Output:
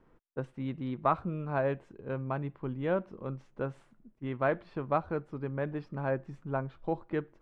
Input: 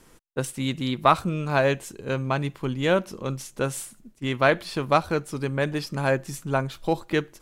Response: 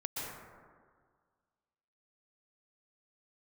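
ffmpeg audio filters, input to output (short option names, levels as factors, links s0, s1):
-af "lowpass=1400,volume=0.398"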